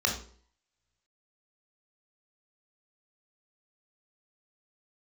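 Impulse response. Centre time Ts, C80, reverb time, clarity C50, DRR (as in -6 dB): 26 ms, 11.5 dB, 0.50 s, 6.5 dB, 0.0 dB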